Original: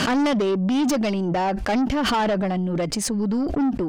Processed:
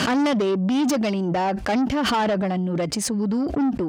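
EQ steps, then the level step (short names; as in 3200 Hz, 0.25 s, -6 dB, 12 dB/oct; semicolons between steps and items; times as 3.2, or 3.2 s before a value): HPF 62 Hz; 0.0 dB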